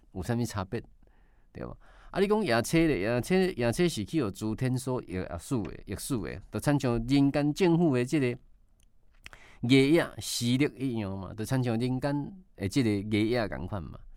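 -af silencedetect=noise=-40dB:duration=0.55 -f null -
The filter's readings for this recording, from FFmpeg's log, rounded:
silence_start: 0.81
silence_end: 1.55 | silence_duration: 0.74
silence_start: 8.35
silence_end: 9.26 | silence_duration: 0.91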